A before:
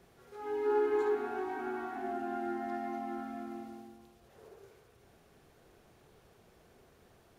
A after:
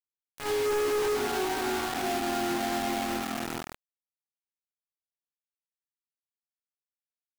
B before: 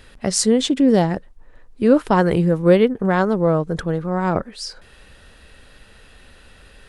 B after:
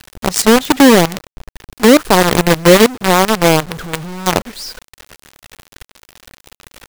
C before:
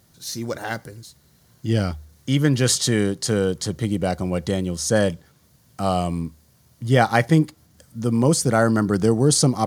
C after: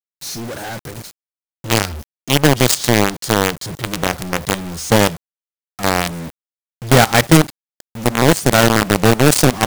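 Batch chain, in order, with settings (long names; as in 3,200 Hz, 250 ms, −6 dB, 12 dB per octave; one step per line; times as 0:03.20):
log-companded quantiser 2 bits
level −1 dB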